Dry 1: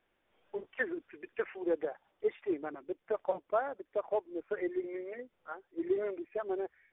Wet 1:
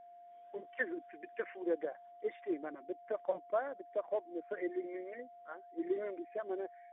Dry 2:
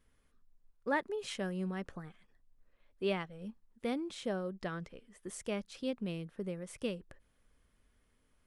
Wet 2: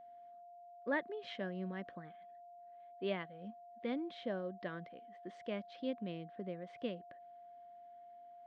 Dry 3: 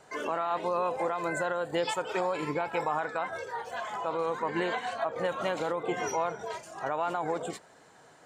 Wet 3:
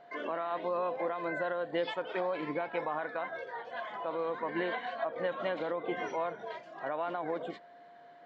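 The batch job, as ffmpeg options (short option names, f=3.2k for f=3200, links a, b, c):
-af "highpass=230,equalizer=f=420:t=q:w=4:g=-6,equalizer=f=850:t=q:w=4:g=-8,equalizer=f=1.3k:t=q:w=4:g=-7,equalizer=f=2.6k:t=q:w=4:g=-7,lowpass=f=3.4k:w=0.5412,lowpass=f=3.4k:w=1.3066,aeval=exprs='val(0)+0.00224*sin(2*PI*700*n/s)':c=same"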